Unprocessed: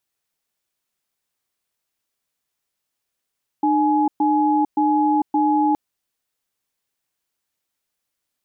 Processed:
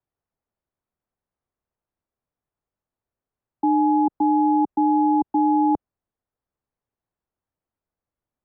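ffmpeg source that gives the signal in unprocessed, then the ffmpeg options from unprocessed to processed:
-f lavfi -i "aevalsrc='0.133*(sin(2*PI*302*t)+sin(2*PI*841*t))*clip(min(mod(t,0.57),0.45-mod(t,0.57))/0.005,0,1)':d=2.12:s=44100"
-filter_complex "[0:a]lowpass=1k,acrossover=split=130|330[a][b][c];[a]acontrast=85[d];[d][b][c]amix=inputs=3:normalize=0"

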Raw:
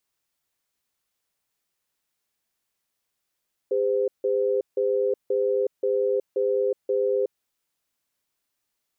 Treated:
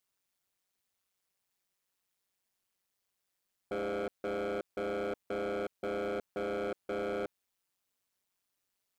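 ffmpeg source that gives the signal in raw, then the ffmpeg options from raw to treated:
-f lavfi -i "aevalsrc='0.0708*(sin(2*PI*403*t)+sin(2*PI*512*t))*clip(min(mod(t,0.53),0.37-mod(t,0.53))/0.005,0,1)':d=3.67:s=44100"
-af "volume=29.5dB,asoftclip=hard,volume=-29.5dB,tremolo=f=190:d=0.889"

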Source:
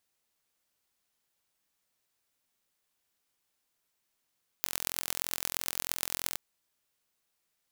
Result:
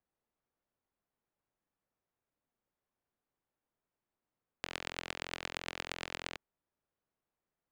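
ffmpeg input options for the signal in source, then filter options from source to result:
-f lavfi -i "aevalsrc='0.841*eq(mod(n,1023),0)*(0.5+0.5*eq(mod(n,5115),0))':d=1.73:s=44100"
-filter_complex "[0:a]acrossover=split=300|1600|2300[a][b][c][d];[d]asoftclip=type=tanh:threshold=-14.5dB[e];[a][b][c][e]amix=inputs=4:normalize=0,adynamicsmooth=sensitivity=3.5:basefreq=1.3k"

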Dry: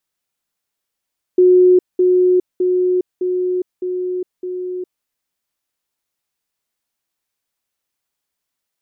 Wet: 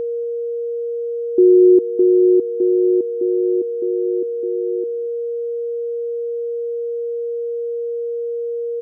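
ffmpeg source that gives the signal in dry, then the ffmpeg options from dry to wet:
-f lavfi -i "aevalsrc='pow(10,(-6.5-3*floor(t/0.61))/20)*sin(2*PI*364*t)*clip(min(mod(t,0.61),0.41-mod(t,0.61))/0.005,0,1)':d=3.66:s=44100"
-filter_complex "[0:a]aeval=exprs='val(0)+0.1*sin(2*PI*470*n/s)':c=same,asplit=2[a][b];[b]adelay=233.2,volume=-22dB,highshelf=f=4k:g=-5.25[c];[a][c]amix=inputs=2:normalize=0"

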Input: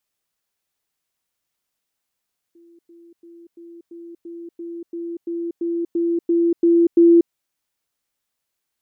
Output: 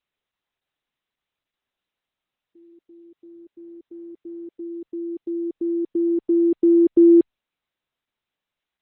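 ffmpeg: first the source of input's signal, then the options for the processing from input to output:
-f lavfi -i "aevalsrc='pow(10,(-47+3*floor(t/0.34))/20)*sin(2*PI*339*t)*clip(min(mod(t,0.34),0.24-mod(t,0.34))/0.005,0,1)':d=4.76:s=44100"
-ar 48000 -c:a libopus -b:a 8k

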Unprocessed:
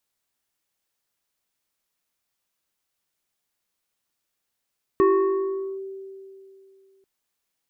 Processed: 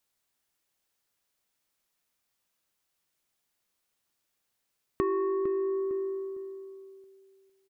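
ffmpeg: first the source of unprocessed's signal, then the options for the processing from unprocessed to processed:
-f lavfi -i "aevalsrc='0.224*pow(10,-3*t/2.71)*sin(2*PI*387*t+0.83*clip(1-t/0.8,0,1)*sin(2*PI*1.87*387*t))':d=2.04:s=44100"
-filter_complex "[0:a]asplit=2[a][b];[b]adelay=455,lowpass=f=2k:p=1,volume=-10dB,asplit=2[c][d];[d]adelay=455,lowpass=f=2k:p=1,volume=0.28,asplit=2[e][f];[f]adelay=455,lowpass=f=2k:p=1,volume=0.28[g];[c][e][g]amix=inputs=3:normalize=0[h];[a][h]amix=inputs=2:normalize=0,acompressor=threshold=-27dB:ratio=6"

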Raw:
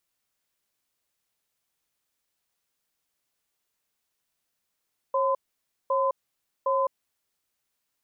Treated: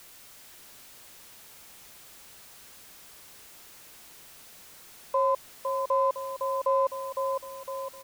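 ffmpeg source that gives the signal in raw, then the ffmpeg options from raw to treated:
-f lavfi -i "aevalsrc='0.0631*(sin(2*PI*542*t)+sin(2*PI*1020*t))*clip(min(mod(t,0.76),0.21-mod(t,0.76))/0.005,0,1)':d=2.23:s=44100"
-filter_complex "[0:a]aeval=exprs='val(0)+0.5*0.00596*sgn(val(0))':c=same,asplit=2[a][b];[b]adelay=508,lowpass=f=2k:p=1,volume=-4.5dB,asplit=2[c][d];[d]adelay=508,lowpass=f=2k:p=1,volume=0.53,asplit=2[e][f];[f]adelay=508,lowpass=f=2k:p=1,volume=0.53,asplit=2[g][h];[h]adelay=508,lowpass=f=2k:p=1,volume=0.53,asplit=2[i][j];[j]adelay=508,lowpass=f=2k:p=1,volume=0.53,asplit=2[k][l];[l]adelay=508,lowpass=f=2k:p=1,volume=0.53,asplit=2[m][n];[n]adelay=508,lowpass=f=2k:p=1,volume=0.53[o];[c][e][g][i][k][m][o]amix=inputs=7:normalize=0[p];[a][p]amix=inputs=2:normalize=0"

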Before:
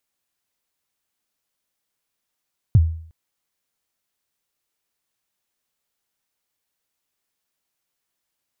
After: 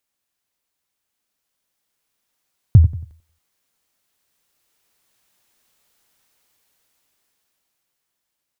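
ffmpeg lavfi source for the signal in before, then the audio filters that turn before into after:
-f lavfi -i "aevalsrc='0.473*pow(10,-3*t/0.55)*sin(2*PI*(130*0.04/log(81/130)*(exp(log(81/130)*min(t,0.04)/0.04)-1)+81*max(t-0.04,0)))':d=0.36:s=44100"
-af "dynaudnorm=f=280:g=13:m=14dB,aecho=1:1:92|184|276:0.251|0.0854|0.029"

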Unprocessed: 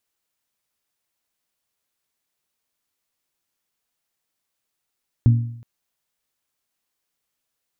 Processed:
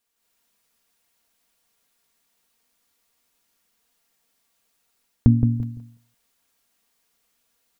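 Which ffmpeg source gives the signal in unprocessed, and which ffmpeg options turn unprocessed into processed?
-f lavfi -i "aevalsrc='0.398*pow(10,-3*t/0.67)*sin(2*PI*117*t)+0.119*pow(10,-3*t/0.544)*sin(2*PI*234*t)+0.0355*pow(10,-3*t/0.515)*sin(2*PI*280.8*t)':d=0.37:s=44100"
-filter_complex "[0:a]asplit=2[a][b];[b]adelay=170,lowpass=f=830:p=1,volume=-7dB,asplit=2[c][d];[d]adelay=170,lowpass=f=830:p=1,volume=0.23,asplit=2[e][f];[f]adelay=170,lowpass=f=830:p=1,volume=0.23[g];[c][e][g]amix=inputs=3:normalize=0[h];[a][h]amix=inputs=2:normalize=0,dynaudnorm=f=140:g=3:m=8dB,aecho=1:1:4.3:0.49"

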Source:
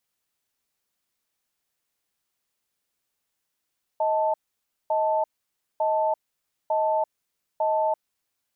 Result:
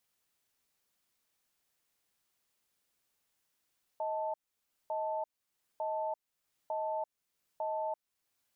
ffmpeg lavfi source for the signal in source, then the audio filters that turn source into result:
-f lavfi -i "aevalsrc='0.0708*(sin(2*PI*629*t)+sin(2*PI*881*t))*clip(min(mod(t,0.9),0.34-mod(t,0.9))/0.005,0,1)':d=3.98:s=44100"
-af "alimiter=level_in=5dB:limit=-24dB:level=0:latency=1:release=465,volume=-5dB"

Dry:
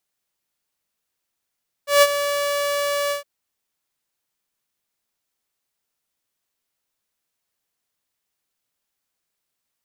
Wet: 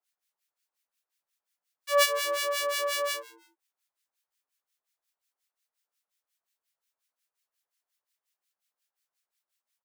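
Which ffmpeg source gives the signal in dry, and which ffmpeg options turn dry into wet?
-f lavfi -i "aevalsrc='0.473*(2*mod(574*t,1)-1)':d=1.363:s=44100,afade=t=in:d=0.152,afade=t=out:st=0.152:d=0.043:silence=0.266,afade=t=out:st=1.24:d=0.123"
-filter_complex "[0:a]acrossover=split=1400[a][b];[a]aeval=exprs='val(0)*(1-1/2+1/2*cos(2*PI*5.6*n/s))':c=same[c];[b]aeval=exprs='val(0)*(1-1/2-1/2*cos(2*PI*5.6*n/s))':c=same[d];[c][d]amix=inputs=2:normalize=0,highpass=620,asplit=3[e][f][g];[f]adelay=162,afreqshift=-120,volume=-20.5dB[h];[g]adelay=324,afreqshift=-240,volume=-31dB[i];[e][h][i]amix=inputs=3:normalize=0"

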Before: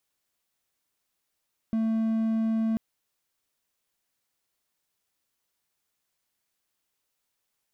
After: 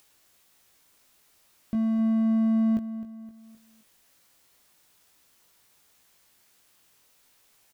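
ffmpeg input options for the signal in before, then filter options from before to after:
-f lavfi -i "aevalsrc='0.0891*(1-4*abs(mod(223*t+0.25,1)-0.5))':d=1.04:s=44100"
-filter_complex "[0:a]acompressor=mode=upward:threshold=-50dB:ratio=2.5,asplit=2[a][b];[b]adelay=19,volume=-6dB[c];[a][c]amix=inputs=2:normalize=0,asplit=2[d][e];[e]aecho=0:1:260|520|780|1040:0.2|0.0858|0.0369|0.0159[f];[d][f]amix=inputs=2:normalize=0"

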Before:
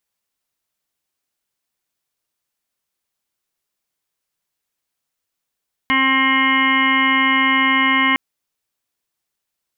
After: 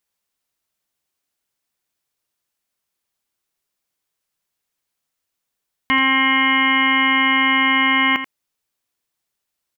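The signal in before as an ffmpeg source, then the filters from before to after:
-f lavfi -i "aevalsrc='0.0944*sin(2*PI*266*t)+0.0119*sin(2*PI*532*t)+0.0266*sin(2*PI*798*t)+0.119*sin(2*PI*1064*t)+0.0237*sin(2*PI*1330*t)+0.0282*sin(2*PI*1596*t)+0.0891*sin(2*PI*1862*t)+0.141*sin(2*PI*2128*t)+0.0188*sin(2*PI*2394*t)+0.0133*sin(2*PI*2660*t)+0.0596*sin(2*PI*2926*t)+0.0211*sin(2*PI*3192*t)':d=2.26:s=44100"
-af "aecho=1:1:84:0.282"

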